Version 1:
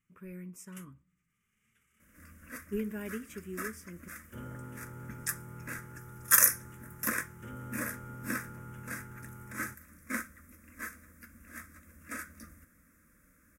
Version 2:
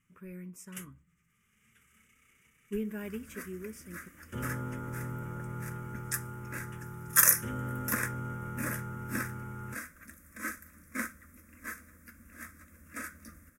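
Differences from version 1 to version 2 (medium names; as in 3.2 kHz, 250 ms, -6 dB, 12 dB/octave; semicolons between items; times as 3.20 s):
first sound +7.5 dB; second sound: entry +0.85 s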